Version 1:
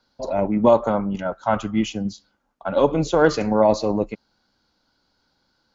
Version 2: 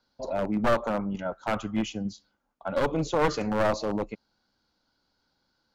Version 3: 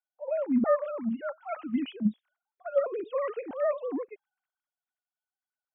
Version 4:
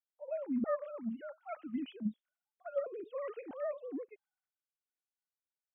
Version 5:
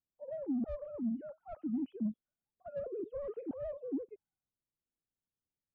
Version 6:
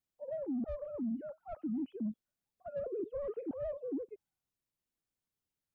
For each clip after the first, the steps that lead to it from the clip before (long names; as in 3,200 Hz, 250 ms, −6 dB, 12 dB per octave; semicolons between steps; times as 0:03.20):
wavefolder on the positive side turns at −15 dBFS; level −6 dB
three sine waves on the formant tracks; low-shelf EQ 260 Hz +8.5 dB; multiband upward and downward expander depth 40%; level −5 dB
rotating-speaker cabinet horn 8 Hz, later 1.2 Hz, at 0:01.21; level −7 dB
soft clipping −35.5 dBFS, distortion −10 dB; drawn EQ curve 150 Hz 0 dB, 280 Hz −4 dB, 2,200 Hz −29 dB; downward compressor, threshold −45 dBFS, peak gain reduction 6.5 dB; level +13.5 dB
brickwall limiter −33 dBFS, peak gain reduction 5.5 dB; level +2 dB